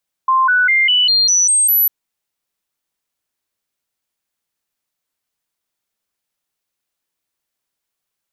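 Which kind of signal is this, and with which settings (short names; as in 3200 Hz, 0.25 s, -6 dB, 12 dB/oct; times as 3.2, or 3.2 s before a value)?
stepped sine 1050 Hz up, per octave 2, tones 8, 0.20 s, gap 0.00 s -10 dBFS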